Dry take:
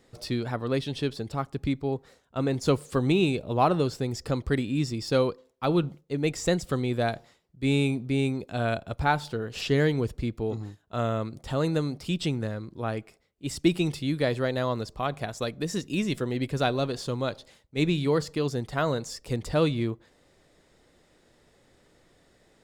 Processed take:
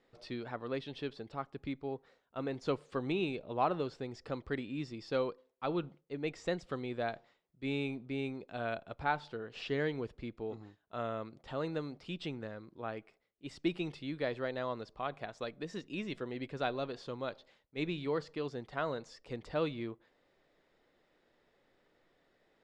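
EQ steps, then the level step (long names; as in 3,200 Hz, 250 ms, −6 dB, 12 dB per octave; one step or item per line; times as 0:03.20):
low-pass filter 3,400 Hz 12 dB per octave
parametric band 68 Hz −12 dB 3 octaves
−7.5 dB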